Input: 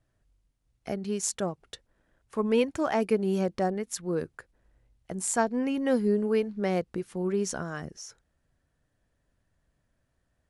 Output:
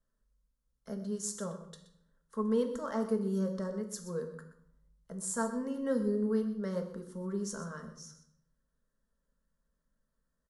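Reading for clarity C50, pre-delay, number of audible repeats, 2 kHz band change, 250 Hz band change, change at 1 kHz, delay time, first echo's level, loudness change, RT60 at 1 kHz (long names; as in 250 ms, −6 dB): 9.0 dB, 3 ms, 1, −10.5 dB, −4.5 dB, −9.5 dB, 125 ms, −14.0 dB, −6.0 dB, 0.65 s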